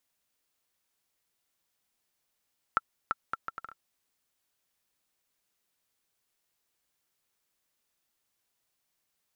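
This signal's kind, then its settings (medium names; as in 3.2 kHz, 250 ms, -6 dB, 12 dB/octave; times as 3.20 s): bouncing ball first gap 0.34 s, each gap 0.66, 1.34 kHz, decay 30 ms -11.5 dBFS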